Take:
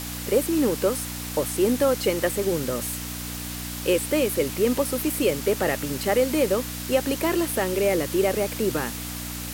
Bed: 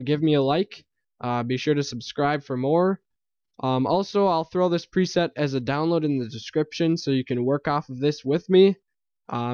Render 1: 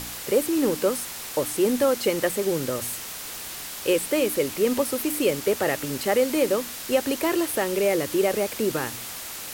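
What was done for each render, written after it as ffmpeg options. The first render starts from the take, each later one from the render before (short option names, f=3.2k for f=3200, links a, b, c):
-af "bandreject=f=60:t=h:w=4,bandreject=f=120:t=h:w=4,bandreject=f=180:t=h:w=4,bandreject=f=240:t=h:w=4,bandreject=f=300:t=h:w=4"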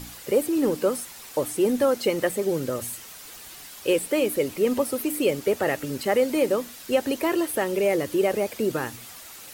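-af "afftdn=nr=9:nf=-36"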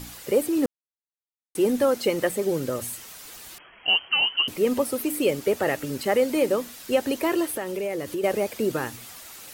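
-filter_complex "[0:a]asettb=1/sr,asplit=3[a][b][c];[a]atrim=end=3.584[d];[b]atrim=start=3.58:end=4.48,asetpts=PTS-STARTPTS,afade=t=in:d=0.004:c=qsin,afade=t=out:st=0.896:d=0.004:c=qsin,lowpass=f=2.8k:t=q:w=0.5098,lowpass=f=2.8k:t=q:w=0.6013,lowpass=f=2.8k:t=q:w=0.9,lowpass=f=2.8k:t=q:w=2.563,afreqshift=-3300[e];[c]atrim=start=4.476[f];[d][e]acrossfade=d=0.004:c1=hsin:c2=qsin[g];[g][f]acrossfade=d=0.004:c1=qsin:c2=hsin,asettb=1/sr,asplit=3[h][i][j];[h]atrim=end=7.534[k];[i]atrim=start=7.53:end=8.24,asetpts=PTS-STARTPTS,afade=t=in:d=0.004:c=qsin,afade=t=out:st=0.706:d=0.004:c=qsin,acompressor=threshold=-28dB:ratio=2.5:attack=3.2:release=140:knee=1:detection=peak[l];[j]atrim=start=8.236[m];[k][l]acrossfade=d=0.004:c1=hsin:c2=qsin[n];[n][m]acrossfade=d=0.004:c1=qsin:c2=hsin,asplit=3[o][p][q];[o]atrim=end=0.66,asetpts=PTS-STARTPTS,afade=t=out:st=0.656:d=0.004:c=hsin[r];[p]atrim=start=0.66:end=1.55,asetpts=PTS-STARTPTS,volume=0[s];[q]atrim=start=1.55,asetpts=PTS-STARTPTS,afade=t=in:d=0.004:c=hsin[t];[r][s][t]concat=n=3:v=0:a=1"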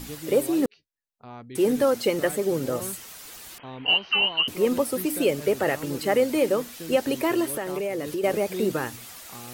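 -filter_complex "[1:a]volume=-16.5dB[a];[0:a][a]amix=inputs=2:normalize=0"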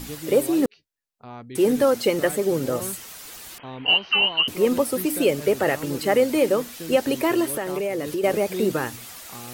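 -af "volume=2.5dB"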